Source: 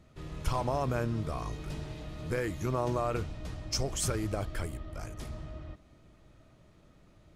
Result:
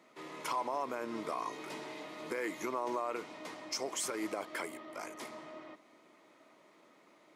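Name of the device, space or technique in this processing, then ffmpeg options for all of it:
laptop speaker: -af "highpass=f=270:w=0.5412,highpass=f=270:w=1.3066,equalizer=f=990:t=o:w=0.38:g=8.5,equalizer=f=2.1k:t=o:w=0.21:g=9.5,alimiter=level_in=2.5dB:limit=-24dB:level=0:latency=1:release=173,volume=-2.5dB,volume=1dB"

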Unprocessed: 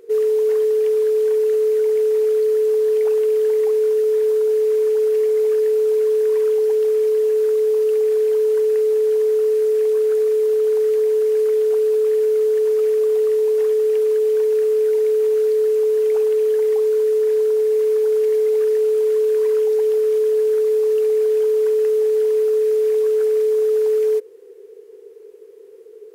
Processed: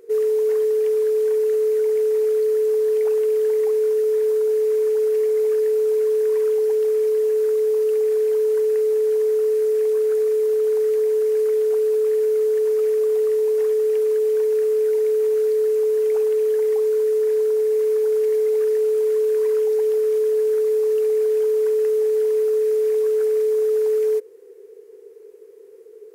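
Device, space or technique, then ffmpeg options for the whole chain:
exciter from parts: -filter_complex "[0:a]asplit=2[a][b];[b]highpass=2.2k,asoftclip=type=tanh:threshold=-35.5dB,highpass=f=2.2k:w=0.5412,highpass=f=2.2k:w=1.3066,volume=-9.5dB[c];[a][c]amix=inputs=2:normalize=0,volume=-2dB"

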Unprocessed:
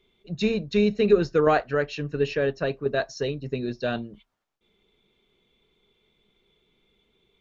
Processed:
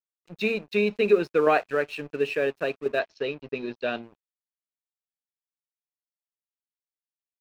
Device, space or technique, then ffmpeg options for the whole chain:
pocket radio on a weak battery: -filter_complex "[0:a]highpass=270,lowpass=4.2k,aeval=exprs='sgn(val(0))*max(abs(val(0))-0.00473,0)':c=same,equalizer=f=2.5k:t=o:w=0.22:g=9,asettb=1/sr,asplit=3[a][b][c];[a]atrim=end=2.994[d];[b]atrim=start=2.99:end=4.03,asetpts=PTS-STARTPTS,afade=t=in:d=0.004:c=qsin,afade=t=out:st=1.036:d=0.004:c=qsin,lowpass=f=5.2k:w=0.5412,lowpass=f=5.2k:w=1.3066[e];[c]atrim=start=4.026[f];[d][e]acrossfade=d=0.004:c1=hsin:c2=qsin[g];[g][f]acrossfade=d=0.004:c1=qsin:c2=hsin"

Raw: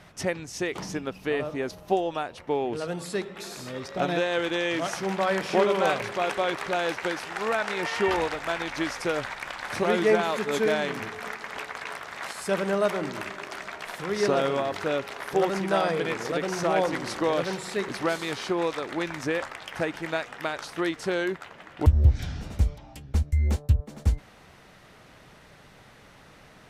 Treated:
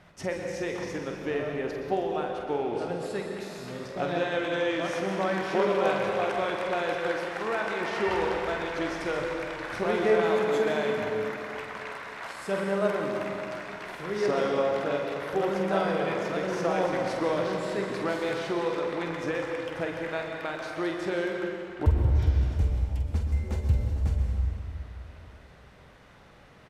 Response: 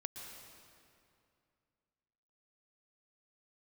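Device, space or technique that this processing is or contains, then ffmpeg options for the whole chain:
swimming-pool hall: -filter_complex "[0:a]asplit=2[a][b];[b]adelay=46,volume=-11dB[c];[a][c]amix=inputs=2:normalize=0,asplit=2[d][e];[e]adelay=48,volume=-9dB[f];[d][f]amix=inputs=2:normalize=0[g];[1:a]atrim=start_sample=2205[h];[g][h]afir=irnorm=-1:irlink=0,highshelf=f=4.1k:g=-8"

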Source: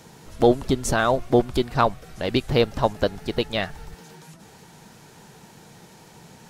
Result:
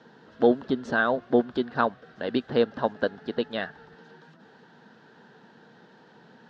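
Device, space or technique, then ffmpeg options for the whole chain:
kitchen radio: -af "highpass=190,equalizer=f=240:t=q:w=4:g=7,equalizer=f=470:t=q:w=4:g=4,equalizer=f=1.6k:t=q:w=4:g=10,equalizer=f=2.3k:t=q:w=4:g=-10,lowpass=f=4k:w=0.5412,lowpass=f=4k:w=1.3066,volume=-6dB"

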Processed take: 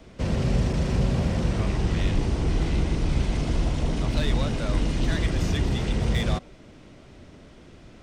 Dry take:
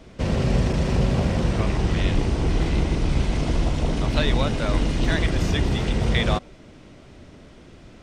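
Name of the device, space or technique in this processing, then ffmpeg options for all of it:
one-band saturation: -filter_complex "[0:a]acrossover=split=270|4600[a][b][c];[b]asoftclip=type=tanh:threshold=-26.5dB[d];[a][d][c]amix=inputs=3:normalize=0,volume=-2dB"

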